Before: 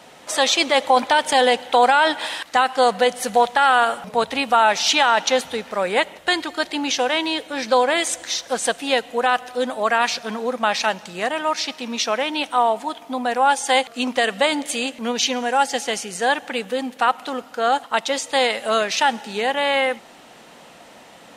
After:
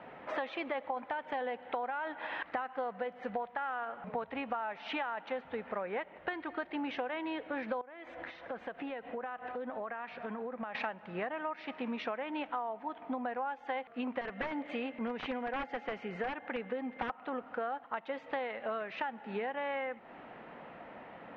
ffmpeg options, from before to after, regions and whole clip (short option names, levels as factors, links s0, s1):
-filter_complex "[0:a]asettb=1/sr,asplit=3[s0][s1][s2];[s0]atrim=end=7.814[s3];[s1]atrim=start=7.81:end=10.75,asetpts=PTS-STARTPTS,afade=t=in:d=0.004:c=qsin,afade=t=out:st=2.936:d=0.004:c=qsin,highshelf=f=6600:g=-9.5,acompressor=threshold=0.0282:ratio=16:attack=3.2:release=140:knee=1:detection=peak[s4];[s2]atrim=start=10.746[s5];[s3][s4]acrossfade=d=0.004:c1=hsin:c2=qsin[s6];[s6][s5]acrossfade=d=0.004:c1=qsin:c2=hsin,asettb=1/sr,asplit=3[s7][s8][s9];[s7]atrim=end=14.214[s10];[s8]atrim=start=14.21:end=17.1,asetpts=PTS-STARTPTS,afade=t=in:d=0.004:c=qsin,afade=t=out:st=2.886:d=0.004:c=qsin,aeval=exprs='val(0)+0.00501*sin(2*PI*2100*n/s)':c=same,aeval=exprs='(mod(3.76*val(0)+1,2)-1)/3.76':c=same[s11];[s9]atrim=start=17.096[s12];[s10][s11]acrossfade=d=0.004:c1=hsin:c2=qsin[s13];[s13][s12]acrossfade=d=0.004:c1=qsin:c2=hsin,lowpass=f=2200:w=0.5412,lowpass=f=2200:w=1.3066,acompressor=threshold=0.0316:ratio=12,volume=0.668"